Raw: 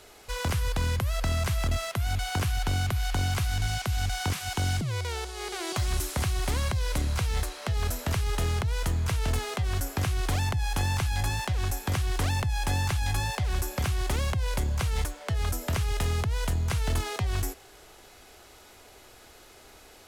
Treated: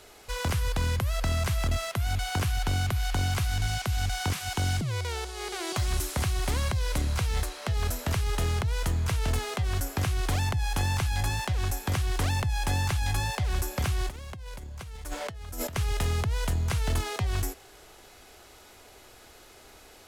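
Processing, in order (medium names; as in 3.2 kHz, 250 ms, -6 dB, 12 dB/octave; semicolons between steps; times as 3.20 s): 14.09–15.76 s: compressor with a negative ratio -38 dBFS, ratio -1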